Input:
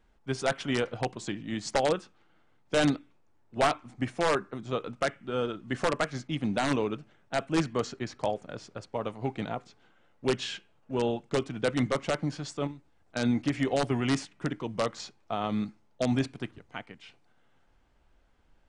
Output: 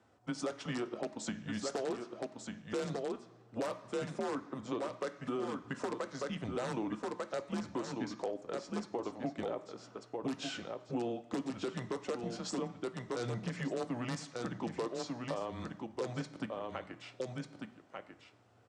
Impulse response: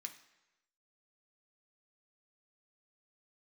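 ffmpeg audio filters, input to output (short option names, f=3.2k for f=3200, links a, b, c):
-filter_complex "[0:a]aecho=1:1:1194:0.335,afreqshift=-120,aeval=exprs='0.282*(cos(1*acos(clip(val(0)/0.282,-1,1)))-cos(1*PI/2))+0.0501*(cos(2*acos(clip(val(0)/0.282,-1,1)))-cos(2*PI/2))+0.0447*(cos(3*acos(clip(val(0)/0.282,-1,1)))-cos(3*PI/2))':c=same,aeval=exprs='0.422*sin(PI/2*4.47*val(0)/0.422)':c=same,highpass=240,lowpass=4.7k,alimiter=limit=-14dB:level=0:latency=1:release=248,equalizer=f=2.5k:t=o:w=1.9:g=-12.5,asplit=2[a][b];[1:a]atrim=start_sample=2205,highshelf=f=7.3k:g=12[c];[b][c]afir=irnorm=-1:irlink=0,volume=2.5dB[d];[a][d]amix=inputs=2:normalize=0,acompressor=threshold=-35dB:ratio=2,volume=-5dB"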